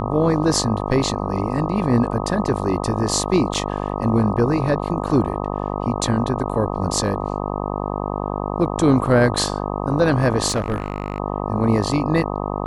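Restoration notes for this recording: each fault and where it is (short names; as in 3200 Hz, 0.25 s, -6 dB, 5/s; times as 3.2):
buzz 50 Hz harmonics 25 -25 dBFS
3.54–3.55 gap 6.2 ms
10.48–11.2 clipped -16.5 dBFS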